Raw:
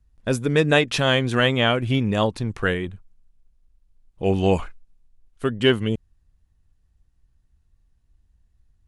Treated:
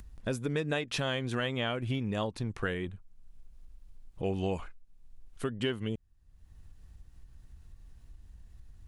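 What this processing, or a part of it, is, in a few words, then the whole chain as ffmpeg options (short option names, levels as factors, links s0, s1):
upward and downward compression: -af "acompressor=mode=upward:threshold=0.0355:ratio=2.5,acompressor=threshold=0.0708:ratio=4,volume=0.501"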